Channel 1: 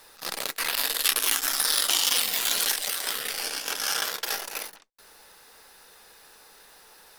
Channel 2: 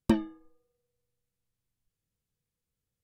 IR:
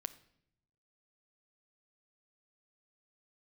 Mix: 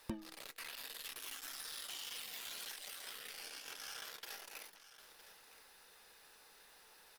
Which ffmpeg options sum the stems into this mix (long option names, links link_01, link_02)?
-filter_complex "[0:a]equalizer=frequency=2600:width=1.1:gain=3.5,asoftclip=type=tanh:threshold=-19.5dB,volume=-11dB,asplit=2[link_01][link_02];[link_02]volume=-22dB[link_03];[1:a]volume=-3.5dB[link_04];[link_03]aecho=0:1:961:1[link_05];[link_01][link_04][link_05]amix=inputs=3:normalize=0,acompressor=threshold=-52dB:ratio=2"